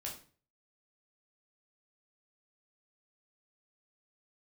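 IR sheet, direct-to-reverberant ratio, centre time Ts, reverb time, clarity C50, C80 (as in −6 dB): −2.5 dB, 24 ms, 0.40 s, 7.5 dB, 13.0 dB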